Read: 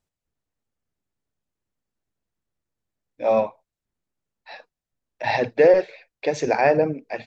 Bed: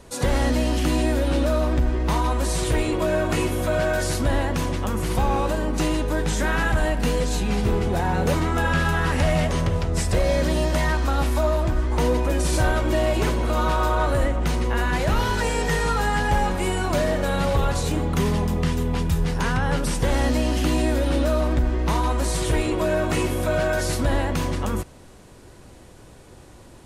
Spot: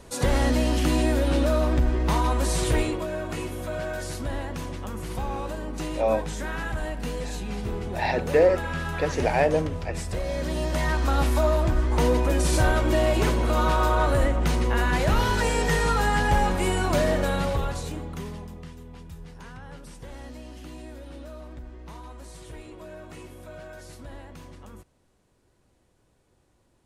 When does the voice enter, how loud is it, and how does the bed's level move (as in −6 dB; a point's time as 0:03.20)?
2.75 s, −4.0 dB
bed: 0:02.81 −1 dB
0:03.07 −9 dB
0:10.26 −9 dB
0:11.14 −0.5 dB
0:17.19 −0.5 dB
0:18.74 −20 dB